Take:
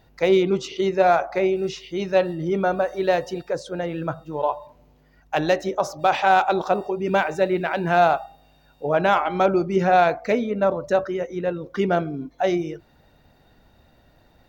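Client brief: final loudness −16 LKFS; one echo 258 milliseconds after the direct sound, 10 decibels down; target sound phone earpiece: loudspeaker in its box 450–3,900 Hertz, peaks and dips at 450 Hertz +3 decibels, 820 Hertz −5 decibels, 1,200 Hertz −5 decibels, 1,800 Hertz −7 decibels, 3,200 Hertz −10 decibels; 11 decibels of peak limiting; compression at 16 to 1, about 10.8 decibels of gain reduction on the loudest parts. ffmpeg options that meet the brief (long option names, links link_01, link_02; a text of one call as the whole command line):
ffmpeg -i in.wav -af "acompressor=threshold=-23dB:ratio=16,alimiter=limit=-22dB:level=0:latency=1,highpass=450,equalizer=frequency=450:width_type=q:width=4:gain=3,equalizer=frequency=820:width_type=q:width=4:gain=-5,equalizer=frequency=1200:width_type=q:width=4:gain=-5,equalizer=frequency=1800:width_type=q:width=4:gain=-7,equalizer=frequency=3200:width_type=q:width=4:gain=-10,lowpass=frequency=3900:width=0.5412,lowpass=frequency=3900:width=1.3066,aecho=1:1:258:0.316,volume=19.5dB" out.wav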